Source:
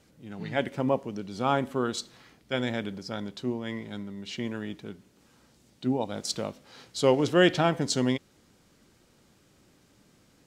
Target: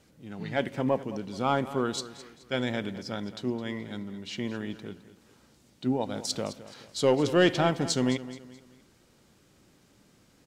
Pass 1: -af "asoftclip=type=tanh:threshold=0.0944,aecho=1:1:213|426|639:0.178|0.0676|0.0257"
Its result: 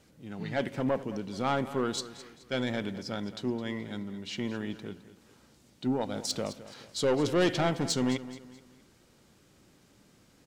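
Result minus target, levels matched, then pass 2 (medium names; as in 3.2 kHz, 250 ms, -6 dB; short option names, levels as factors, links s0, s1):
saturation: distortion +11 dB
-af "asoftclip=type=tanh:threshold=0.282,aecho=1:1:213|426|639:0.178|0.0676|0.0257"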